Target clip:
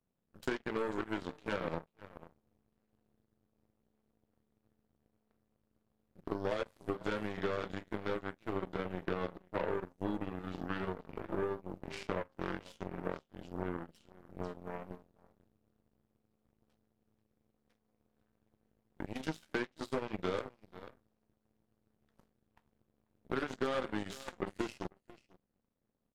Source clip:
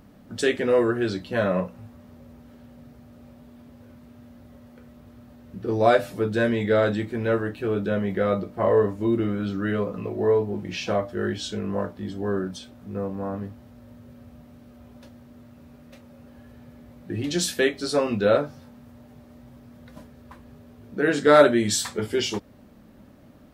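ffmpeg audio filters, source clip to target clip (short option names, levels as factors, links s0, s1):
-filter_complex "[0:a]acrossover=split=180|2700[s0][s1][s2];[s0]acompressor=threshold=0.00631:ratio=4[s3];[s1]acompressor=threshold=0.0891:ratio=4[s4];[s2]acompressor=threshold=0.00891:ratio=4[s5];[s3][s4][s5]amix=inputs=3:normalize=0,asplit=2[s6][s7];[s7]aecho=0:1:441:0.237[s8];[s6][s8]amix=inputs=2:normalize=0,asetrate=39690,aresample=44100,aeval=exprs='0.282*(cos(1*acos(clip(val(0)/0.282,-1,1)))-cos(1*PI/2))+0.0224*(cos(4*acos(clip(val(0)/0.282,-1,1)))-cos(4*PI/2))+0.0398*(cos(7*acos(clip(val(0)/0.282,-1,1)))-cos(7*PI/2))':c=same,acompressor=threshold=0.01:ratio=2.5,volume=1.26"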